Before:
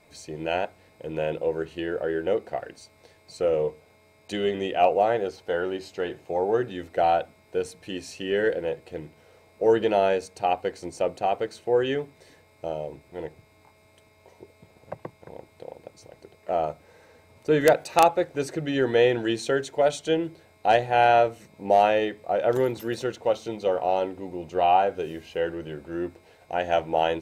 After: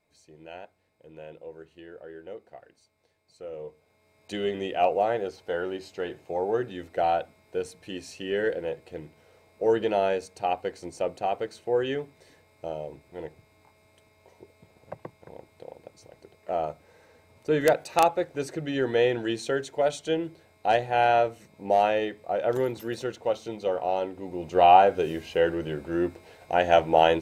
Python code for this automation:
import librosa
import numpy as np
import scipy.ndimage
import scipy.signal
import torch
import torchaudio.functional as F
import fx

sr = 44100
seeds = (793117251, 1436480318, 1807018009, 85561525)

y = fx.gain(x, sr, db=fx.line((3.46, -16.0), (4.33, -3.0), (24.12, -3.0), (24.62, 4.0)))